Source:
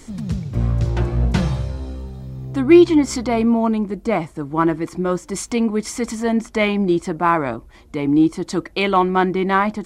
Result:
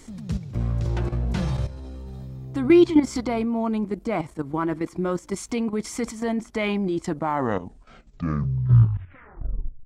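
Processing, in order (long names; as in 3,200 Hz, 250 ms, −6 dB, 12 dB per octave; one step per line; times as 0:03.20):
turntable brake at the end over 2.89 s
output level in coarse steps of 12 dB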